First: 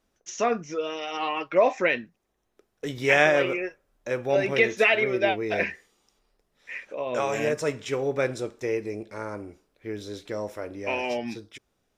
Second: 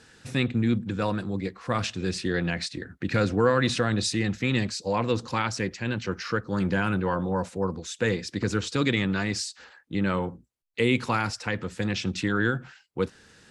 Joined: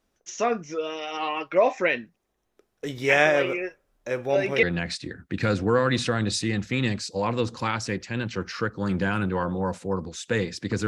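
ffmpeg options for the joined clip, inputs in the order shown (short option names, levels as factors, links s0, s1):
-filter_complex "[0:a]apad=whole_dur=10.87,atrim=end=10.87,atrim=end=4.632[s0];[1:a]atrim=start=2.338:end=8.58[s1];[s0][s1]acrossfade=d=0.004:c1=hsin:c2=hsin"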